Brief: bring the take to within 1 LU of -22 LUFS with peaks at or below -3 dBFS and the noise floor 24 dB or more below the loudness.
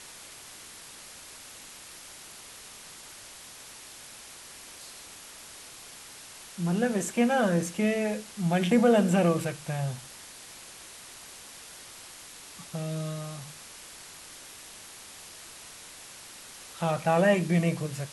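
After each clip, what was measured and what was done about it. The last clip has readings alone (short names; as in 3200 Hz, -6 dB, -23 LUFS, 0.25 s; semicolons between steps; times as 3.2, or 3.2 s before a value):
noise floor -47 dBFS; noise floor target -51 dBFS; loudness -27.0 LUFS; peak -11.5 dBFS; loudness target -22.0 LUFS
-> denoiser 6 dB, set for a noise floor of -47 dBFS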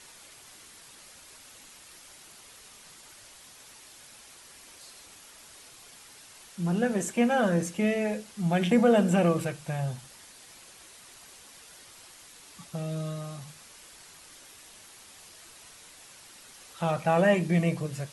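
noise floor -52 dBFS; loudness -27.0 LUFS; peak -11.5 dBFS; loudness target -22.0 LUFS
-> gain +5 dB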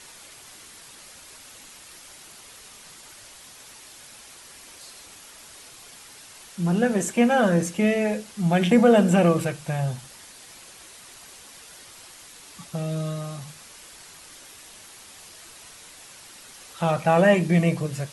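loudness -22.0 LUFS; peak -6.5 dBFS; noise floor -47 dBFS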